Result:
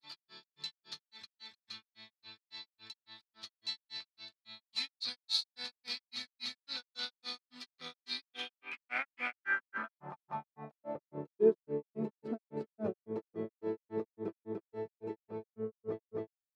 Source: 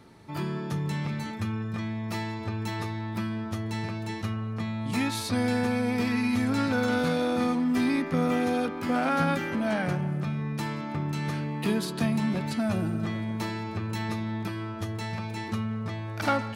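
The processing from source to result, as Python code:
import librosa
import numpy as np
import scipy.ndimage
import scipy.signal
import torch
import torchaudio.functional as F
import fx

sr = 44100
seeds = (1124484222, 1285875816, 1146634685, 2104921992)

y = fx.filter_sweep_bandpass(x, sr, from_hz=4200.0, to_hz=430.0, start_s=8.11, end_s=11.24, q=6.9)
y = fx.granulator(y, sr, seeds[0], grain_ms=165.0, per_s=3.6, spray_ms=333.0, spread_st=0)
y = y * 10.0 ** (12.0 / 20.0)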